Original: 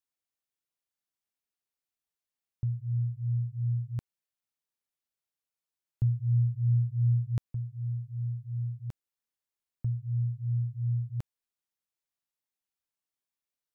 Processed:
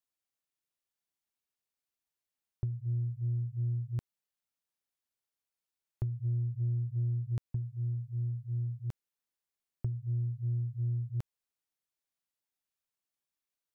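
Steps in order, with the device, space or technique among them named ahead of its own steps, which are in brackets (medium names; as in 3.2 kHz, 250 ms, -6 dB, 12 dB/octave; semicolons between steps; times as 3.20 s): drum-bus smash (transient shaper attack +7 dB, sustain 0 dB; compression 6:1, threshold -27 dBFS, peak gain reduction 10 dB; saturation -23 dBFS, distortion -22 dB); trim -1 dB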